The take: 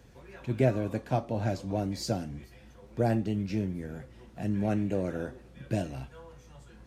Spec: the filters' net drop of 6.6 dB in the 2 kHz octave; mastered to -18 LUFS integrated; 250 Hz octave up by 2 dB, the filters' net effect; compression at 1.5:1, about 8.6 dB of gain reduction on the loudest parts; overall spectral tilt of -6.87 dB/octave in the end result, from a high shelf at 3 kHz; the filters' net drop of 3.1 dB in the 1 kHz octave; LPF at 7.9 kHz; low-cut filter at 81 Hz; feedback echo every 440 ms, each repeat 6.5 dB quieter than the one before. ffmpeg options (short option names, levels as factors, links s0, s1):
-af "highpass=81,lowpass=7900,equalizer=f=250:t=o:g=3,equalizer=f=1000:t=o:g=-4,equalizer=f=2000:t=o:g=-4.5,highshelf=f=3000:g=-8,acompressor=threshold=0.00708:ratio=1.5,aecho=1:1:440|880|1320|1760|2200|2640:0.473|0.222|0.105|0.0491|0.0231|0.0109,volume=9.44"